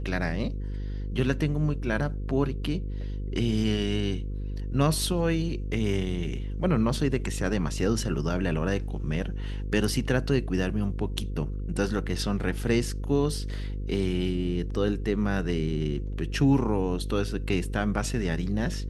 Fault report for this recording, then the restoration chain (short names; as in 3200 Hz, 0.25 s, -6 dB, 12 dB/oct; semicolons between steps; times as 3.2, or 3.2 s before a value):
buzz 50 Hz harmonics 10 -32 dBFS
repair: de-hum 50 Hz, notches 10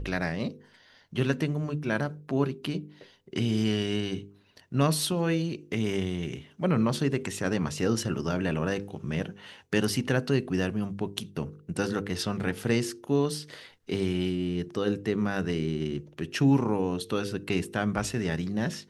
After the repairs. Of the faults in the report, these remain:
none